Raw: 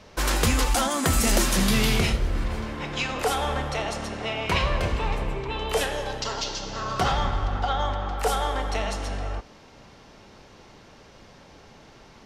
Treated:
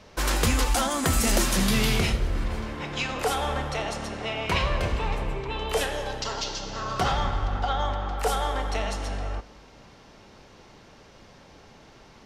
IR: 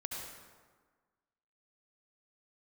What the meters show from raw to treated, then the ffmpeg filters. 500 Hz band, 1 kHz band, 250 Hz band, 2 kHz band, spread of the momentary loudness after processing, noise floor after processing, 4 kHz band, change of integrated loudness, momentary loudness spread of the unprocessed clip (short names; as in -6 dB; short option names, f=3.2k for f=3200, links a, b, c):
-1.0 dB, -1.0 dB, -1.5 dB, -1.0 dB, 9 LU, -52 dBFS, -1.0 dB, -1.0 dB, 9 LU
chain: -filter_complex "[0:a]asplit=2[a][b];[1:a]atrim=start_sample=2205[c];[b][c]afir=irnorm=-1:irlink=0,volume=-17.5dB[d];[a][d]amix=inputs=2:normalize=0,volume=-2dB"